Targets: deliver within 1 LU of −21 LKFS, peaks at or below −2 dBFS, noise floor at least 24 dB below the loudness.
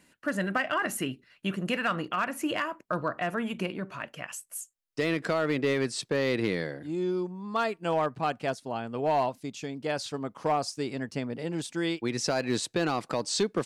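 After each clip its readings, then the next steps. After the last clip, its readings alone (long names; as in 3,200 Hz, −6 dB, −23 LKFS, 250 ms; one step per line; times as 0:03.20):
share of clipped samples 0.4%; peaks flattened at −19.0 dBFS; integrated loudness −30.5 LKFS; sample peak −19.0 dBFS; target loudness −21.0 LKFS
→ clipped peaks rebuilt −19 dBFS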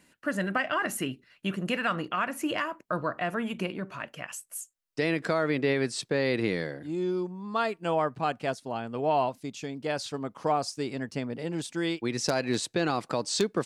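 share of clipped samples 0.0%; integrated loudness −30.5 LKFS; sample peak −10.0 dBFS; target loudness −21.0 LKFS
→ level +9.5 dB
brickwall limiter −2 dBFS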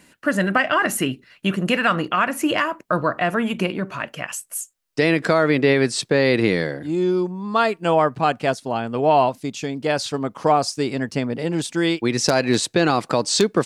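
integrated loudness −21.0 LKFS; sample peak −2.0 dBFS; background noise floor −57 dBFS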